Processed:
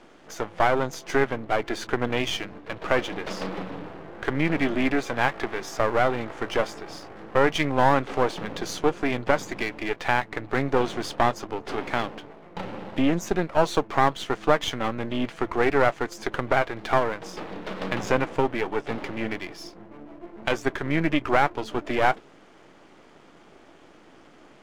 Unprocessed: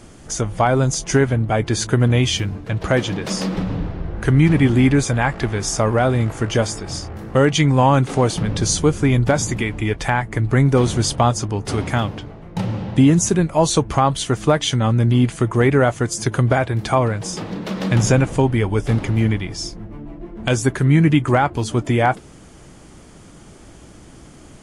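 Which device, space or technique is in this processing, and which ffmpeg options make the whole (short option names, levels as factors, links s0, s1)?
crystal radio: -af "highpass=330,lowpass=3100,aeval=exprs='if(lt(val(0),0),0.251*val(0),val(0))':c=same"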